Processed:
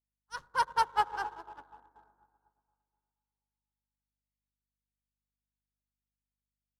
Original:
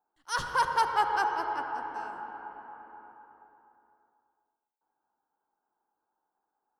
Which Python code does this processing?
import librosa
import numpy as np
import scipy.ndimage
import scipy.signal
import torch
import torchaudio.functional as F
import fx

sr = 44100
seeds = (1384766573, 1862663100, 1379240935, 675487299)

y = fx.wiener(x, sr, points=15)
y = fx.add_hum(y, sr, base_hz=50, snr_db=16)
y = fx.upward_expand(y, sr, threshold_db=-50.0, expansion=2.5)